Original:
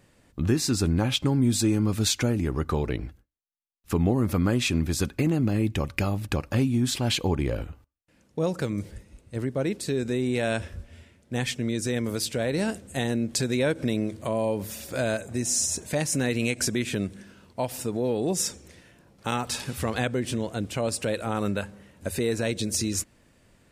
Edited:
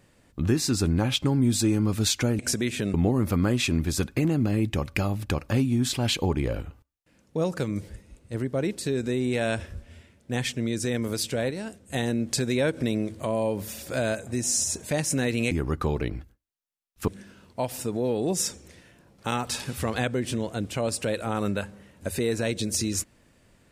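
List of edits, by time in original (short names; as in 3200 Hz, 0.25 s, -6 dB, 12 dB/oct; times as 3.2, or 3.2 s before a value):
2.39–3.96 swap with 16.53–17.08
12.53–12.92 gain -8 dB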